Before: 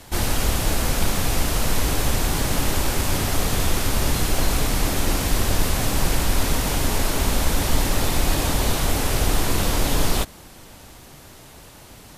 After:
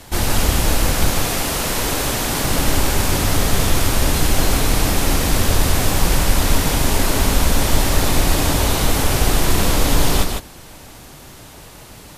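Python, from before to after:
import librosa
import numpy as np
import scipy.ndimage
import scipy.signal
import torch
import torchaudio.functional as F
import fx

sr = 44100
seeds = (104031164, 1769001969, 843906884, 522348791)

y = fx.low_shelf(x, sr, hz=130.0, db=-11.0, at=(1.1, 2.44))
y = y + 10.0 ** (-5.0 / 20.0) * np.pad(y, (int(152 * sr / 1000.0), 0))[:len(y)]
y = y * librosa.db_to_amplitude(3.5)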